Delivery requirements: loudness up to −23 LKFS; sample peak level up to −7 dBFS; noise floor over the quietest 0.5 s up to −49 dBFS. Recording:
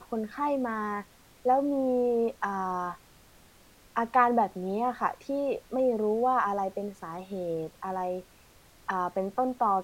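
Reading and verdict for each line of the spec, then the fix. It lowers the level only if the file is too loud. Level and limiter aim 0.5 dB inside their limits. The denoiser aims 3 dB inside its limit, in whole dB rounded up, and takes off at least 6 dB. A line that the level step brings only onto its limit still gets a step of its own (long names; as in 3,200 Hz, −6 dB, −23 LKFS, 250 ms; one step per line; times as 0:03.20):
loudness −29.5 LKFS: in spec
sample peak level −10.5 dBFS: in spec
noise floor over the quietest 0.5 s −57 dBFS: in spec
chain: no processing needed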